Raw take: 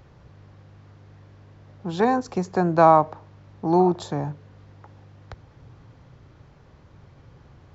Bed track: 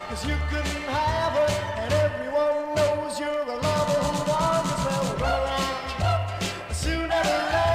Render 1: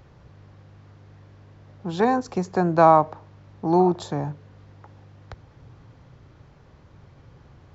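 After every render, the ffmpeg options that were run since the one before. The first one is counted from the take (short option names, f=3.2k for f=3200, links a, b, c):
-af anull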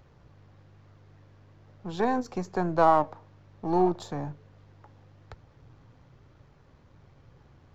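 -af "aeval=exprs='if(lt(val(0),0),0.708*val(0),val(0))':c=same,flanger=delay=1.4:depth=3:regen=82:speed=1.1:shape=triangular"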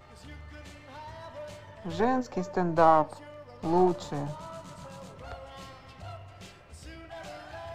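-filter_complex "[1:a]volume=-20dB[a];[0:a][a]amix=inputs=2:normalize=0"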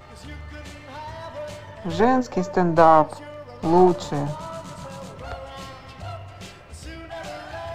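-af "volume=8dB,alimiter=limit=-3dB:level=0:latency=1"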